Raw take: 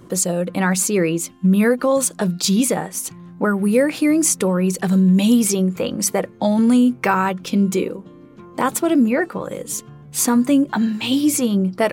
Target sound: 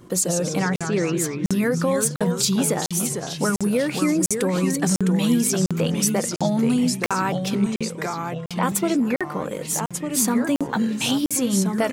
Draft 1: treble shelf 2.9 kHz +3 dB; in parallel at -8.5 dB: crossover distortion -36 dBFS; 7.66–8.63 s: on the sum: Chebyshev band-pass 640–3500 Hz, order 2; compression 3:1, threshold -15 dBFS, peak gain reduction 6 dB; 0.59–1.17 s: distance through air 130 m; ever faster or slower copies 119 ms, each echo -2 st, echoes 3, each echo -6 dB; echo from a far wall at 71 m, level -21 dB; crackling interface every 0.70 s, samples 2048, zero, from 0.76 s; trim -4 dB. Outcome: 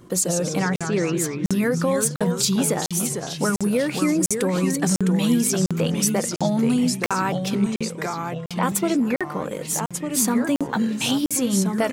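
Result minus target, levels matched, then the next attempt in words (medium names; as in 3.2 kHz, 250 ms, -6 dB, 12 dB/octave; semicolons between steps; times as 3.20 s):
crossover distortion: distortion +6 dB
treble shelf 2.9 kHz +3 dB; in parallel at -8.5 dB: crossover distortion -43 dBFS; 7.66–8.63 s: on the sum: Chebyshev band-pass 640–3500 Hz, order 2; compression 3:1, threshold -15 dBFS, peak gain reduction 6 dB; 0.59–1.17 s: distance through air 130 m; ever faster or slower copies 119 ms, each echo -2 st, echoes 3, each echo -6 dB; echo from a far wall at 71 m, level -21 dB; crackling interface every 0.70 s, samples 2048, zero, from 0.76 s; trim -4 dB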